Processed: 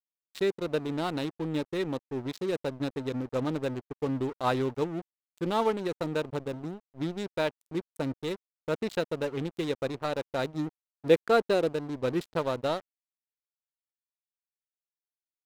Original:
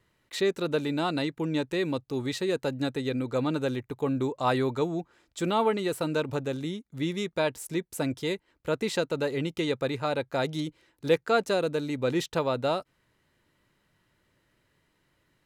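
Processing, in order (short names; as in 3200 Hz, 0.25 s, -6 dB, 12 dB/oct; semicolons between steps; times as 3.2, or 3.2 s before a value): Wiener smoothing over 25 samples; 10.46–11.73 dynamic EQ 360 Hz, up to +4 dB, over -34 dBFS, Q 1; crossover distortion -39 dBFS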